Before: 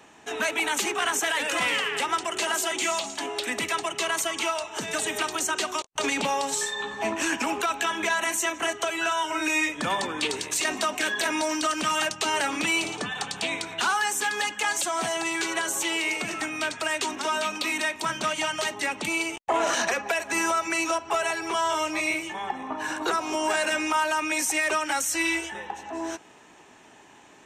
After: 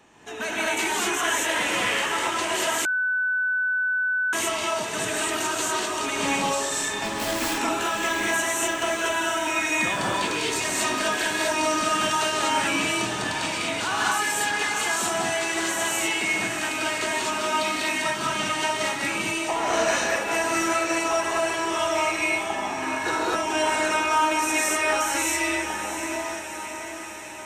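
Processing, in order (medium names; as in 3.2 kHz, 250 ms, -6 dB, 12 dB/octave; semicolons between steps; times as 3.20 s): 6.80–7.40 s: self-modulated delay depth 0.24 ms; bass shelf 180 Hz +6.5 dB; echo that smears into a reverb 731 ms, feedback 64%, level -9 dB; gated-style reverb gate 270 ms rising, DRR -5 dB; 2.85–4.33 s: bleep 1.5 kHz -16 dBFS; trim -5 dB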